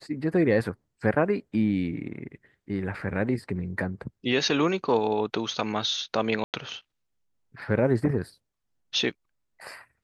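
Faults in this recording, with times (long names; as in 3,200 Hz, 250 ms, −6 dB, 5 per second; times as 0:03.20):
0:06.44–0:06.54: drop-out 98 ms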